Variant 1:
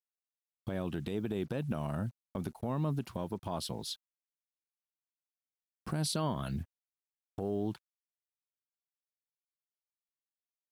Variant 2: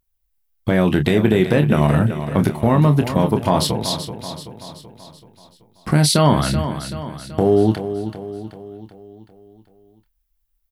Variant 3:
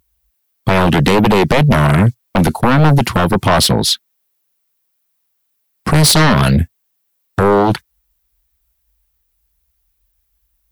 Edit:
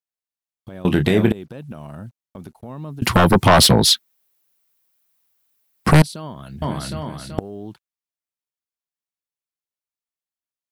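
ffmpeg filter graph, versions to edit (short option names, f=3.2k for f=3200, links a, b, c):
-filter_complex "[1:a]asplit=2[a][b];[0:a]asplit=4[c][d][e][f];[c]atrim=end=0.852[g];[a]atrim=start=0.848:end=1.322[h];[d]atrim=start=1.318:end=3.022[i];[2:a]atrim=start=3.018:end=6.022[j];[e]atrim=start=6.018:end=6.622[k];[b]atrim=start=6.618:end=7.392[l];[f]atrim=start=7.388[m];[g][h]acrossfade=d=0.004:c1=hsin:c2=hsin[n];[n][i]acrossfade=d=0.004:c1=hsin:c2=hsin[o];[o][j]acrossfade=d=0.004:c1=hsin:c2=hsin[p];[p][k]acrossfade=d=0.004:c1=hsin:c2=hsin[q];[q][l]acrossfade=d=0.004:c1=hsin:c2=hsin[r];[r][m]acrossfade=d=0.004:c1=hsin:c2=hsin"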